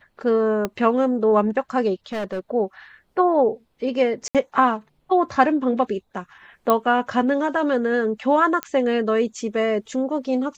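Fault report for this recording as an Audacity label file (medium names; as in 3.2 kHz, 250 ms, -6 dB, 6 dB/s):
0.650000	0.650000	pop -10 dBFS
2.120000	2.400000	clipped -23.5 dBFS
4.280000	4.350000	dropout 67 ms
6.700000	6.700000	pop -6 dBFS
8.630000	8.630000	pop -10 dBFS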